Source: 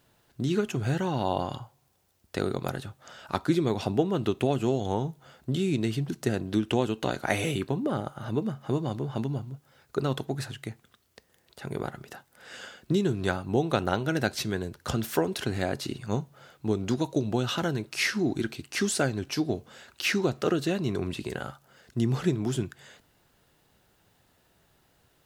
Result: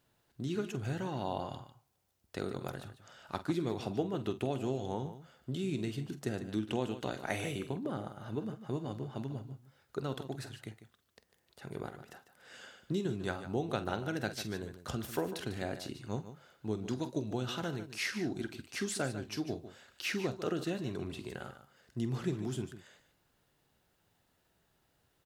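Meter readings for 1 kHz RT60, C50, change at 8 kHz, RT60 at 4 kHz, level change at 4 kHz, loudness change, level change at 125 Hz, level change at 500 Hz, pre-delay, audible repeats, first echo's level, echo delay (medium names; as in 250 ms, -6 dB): no reverb, no reverb, -8.5 dB, no reverb, -8.5 dB, -8.5 dB, -9.0 dB, -8.5 dB, no reverb, 2, -13.0 dB, 47 ms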